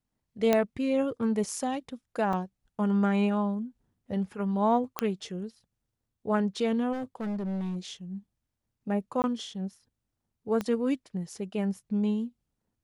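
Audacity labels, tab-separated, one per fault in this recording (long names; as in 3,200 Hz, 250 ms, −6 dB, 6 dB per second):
0.530000	0.530000	click −10 dBFS
2.330000	2.330000	drop-out 2.2 ms
4.990000	4.990000	click −11 dBFS
6.920000	7.770000	clipping −29.5 dBFS
9.220000	9.240000	drop-out 19 ms
10.610000	10.610000	click −18 dBFS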